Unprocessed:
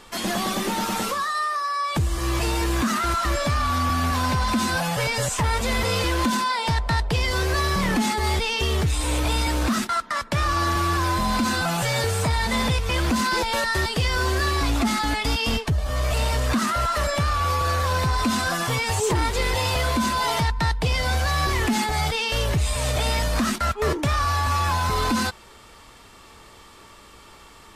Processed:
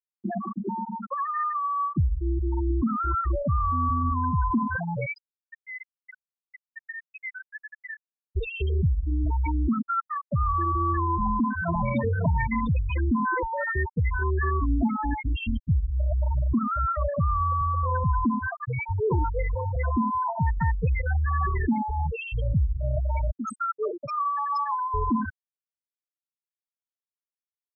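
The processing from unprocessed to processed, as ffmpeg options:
-filter_complex "[0:a]asettb=1/sr,asplit=3[a][b][c];[a]atrim=end=5.064[d];[b]atrim=start=5.06:end=8.36,asetpts=PTS-STARTPTS,afade=t=in:d=0.004:c=qsin,afade=t=out:st=3.296:d=0.004:c=qsin,highpass=f=1.4k:w=0.5412,highpass=f=1.4k:w=1.3066[e];[c]atrim=start=8.356[f];[d][e]acrossfade=d=0.004:c1=hsin:c2=qsin[g];[g][f]acrossfade=d=0.004:c1=qsin:c2=hsin,asplit=2[h][i];[i]afade=t=in:st=11.12:d=0.01,afade=t=out:st=11.92:d=0.01,aecho=0:1:550|1100|1650:0.668344|0.133669|0.0267338[j];[h][j]amix=inputs=2:normalize=0,asettb=1/sr,asplit=3[k][l][m];[k]atrim=end=23.314[n];[l]atrim=start=23.31:end=24.94,asetpts=PTS-STARTPTS,afade=t=in:d=0.004:c=qsin,afade=t=out:st=1.626:d=0.004:c=qsin,bass=f=250:g=-12,treble=f=4k:g=12[o];[m]atrim=start=24.936[p];[n][o]acrossfade=d=0.004:c1=hsin:c2=qsin[q];[q][p]acrossfade=d=0.004:c1=qsin:c2=hsin,afftfilt=real='re*gte(hypot(re,im),0.316)':imag='im*gte(hypot(re,im),0.316)':win_size=1024:overlap=0.75,highshelf=f=3.8k:g=-11.5"

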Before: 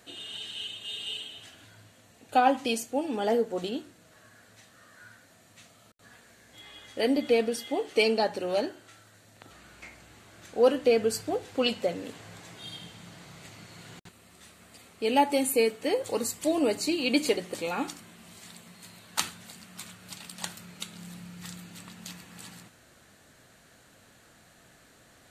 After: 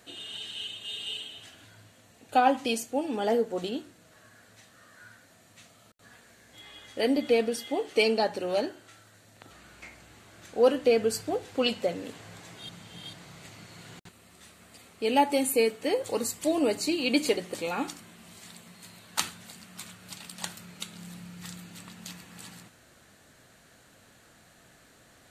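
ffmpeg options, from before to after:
-filter_complex "[0:a]asplit=3[a][b][c];[a]atrim=end=12.692[d];[b]atrim=start=12.688:end=13.132,asetpts=PTS-STARTPTS,areverse[e];[c]atrim=start=13.128[f];[d][e]acrossfade=d=0.004:c1=hsin:c2=hsin[g];[g][f]acrossfade=d=0.004:c1=hsin:c2=hsin"

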